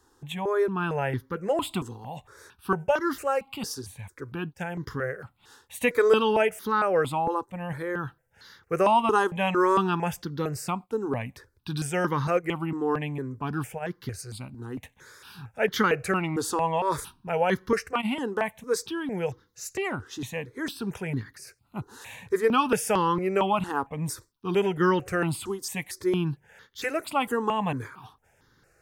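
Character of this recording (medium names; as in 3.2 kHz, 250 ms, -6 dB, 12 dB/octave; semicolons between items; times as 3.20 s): notches that jump at a steady rate 4.4 Hz 620–2500 Hz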